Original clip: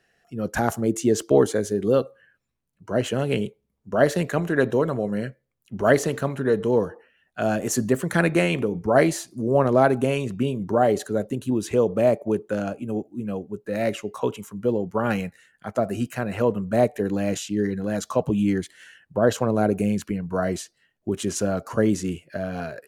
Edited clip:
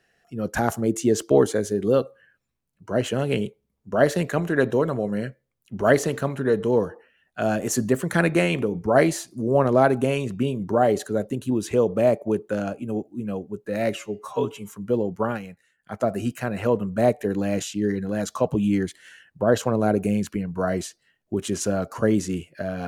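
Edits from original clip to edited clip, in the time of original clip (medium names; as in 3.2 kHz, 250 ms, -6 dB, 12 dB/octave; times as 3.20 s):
13.95–14.45 s: stretch 1.5×
15.00–15.69 s: dip -10.5 dB, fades 0.14 s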